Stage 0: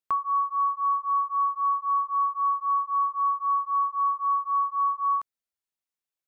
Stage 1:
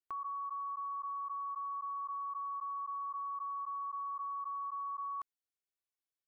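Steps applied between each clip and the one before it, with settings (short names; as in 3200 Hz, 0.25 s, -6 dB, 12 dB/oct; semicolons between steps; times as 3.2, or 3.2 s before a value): comb 2.7 ms, depth 90%; limiter -24.5 dBFS, peak gain reduction 10.5 dB; level quantiser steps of 12 dB; gain -3.5 dB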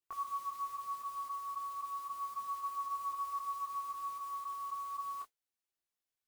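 modulation noise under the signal 19 dB; detuned doubles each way 11 cents; gain +4 dB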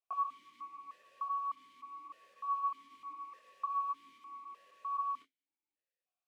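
vowel sequencer 3.3 Hz; gain +10.5 dB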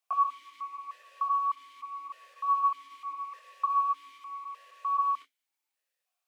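HPF 660 Hz 12 dB/oct; gain +9 dB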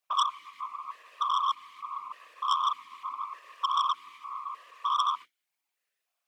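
bell 1900 Hz +3.5 dB 1.6 oct; whisperiser; core saturation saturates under 2800 Hz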